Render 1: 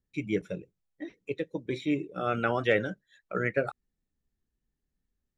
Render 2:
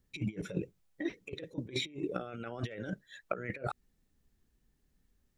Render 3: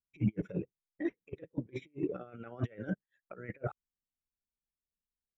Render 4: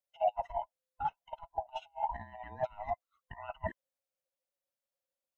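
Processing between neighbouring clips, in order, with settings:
dynamic EQ 1100 Hz, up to -4 dB, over -41 dBFS, Q 1.3; limiter -21 dBFS, peak gain reduction 9.5 dB; negative-ratio compressor -39 dBFS, ratio -0.5; gain +2.5 dB
limiter -28.5 dBFS, peak gain reduction 10.5 dB; running mean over 10 samples; upward expander 2.5:1, over -59 dBFS; gain +9.5 dB
band-swap scrambler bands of 500 Hz

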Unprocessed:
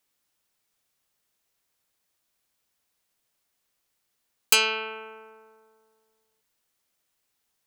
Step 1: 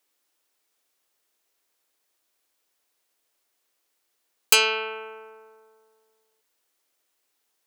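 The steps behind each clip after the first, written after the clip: resonant low shelf 240 Hz -10 dB, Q 1.5; gain +2 dB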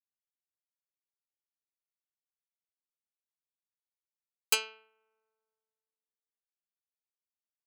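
upward expander 2.5:1, over -34 dBFS; gain -8 dB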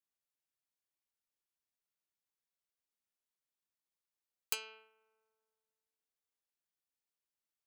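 compressor 12:1, threshold -33 dBFS, peak gain reduction 13 dB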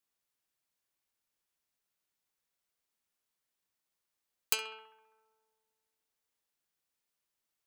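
narrowing echo 66 ms, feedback 65%, band-pass 1400 Hz, level -9.5 dB; gain +6 dB

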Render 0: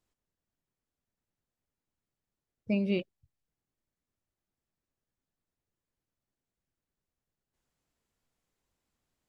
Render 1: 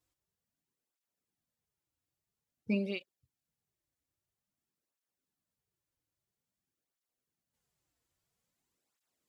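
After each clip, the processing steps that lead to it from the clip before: high shelf 4200 Hz +6 dB; tape flanging out of phase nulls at 0.5 Hz, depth 5.2 ms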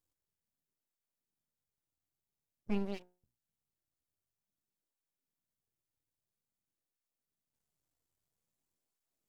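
bell 2300 Hz -7.5 dB 2.7 oct; notches 60/120/180/240/300/360/420/480/540 Hz; half-wave rectifier; gain +2 dB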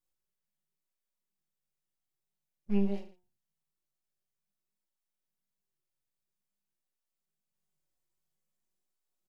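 harmonic-percussive split percussive -7 dB; comb 5.4 ms, depth 73%; on a send: reverse bouncing-ball echo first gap 20 ms, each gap 1.25×, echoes 5; on the sum: gain -3 dB

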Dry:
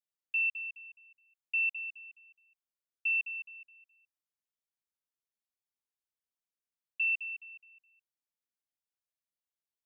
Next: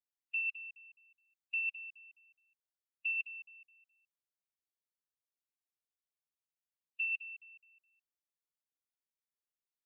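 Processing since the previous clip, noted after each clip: spectral noise reduction 9 dB; gain +1.5 dB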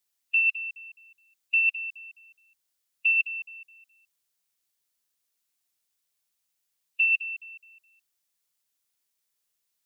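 high shelf 2500 Hz +10.5 dB; gain +7 dB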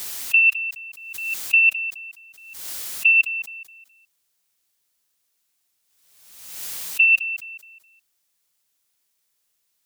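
backwards sustainer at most 49 dB/s; gain +7 dB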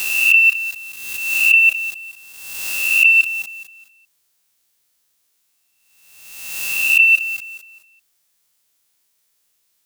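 spectral swells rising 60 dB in 1.17 s; gain +3 dB

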